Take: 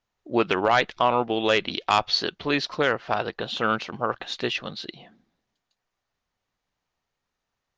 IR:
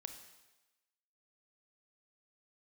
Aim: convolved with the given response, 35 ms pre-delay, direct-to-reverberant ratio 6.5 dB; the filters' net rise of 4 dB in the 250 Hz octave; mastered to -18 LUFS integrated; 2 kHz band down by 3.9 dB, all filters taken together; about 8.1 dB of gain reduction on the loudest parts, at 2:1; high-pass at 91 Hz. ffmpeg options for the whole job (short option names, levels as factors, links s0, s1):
-filter_complex "[0:a]highpass=91,equalizer=f=250:t=o:g=5.5,equalizer=f=2000:t=o:g=-5.5,acompressor=threshold=0.0355:ratio=2,asplit=2[s0][s1];[1:a]atrim=start_sample=2205,adelay=35[s2];[s1][s2]afir=irnorm=-1:irlink=0,volume=0.75[s3];[s0][s3]amix=inputs=2:normalize=0,volume=3.98"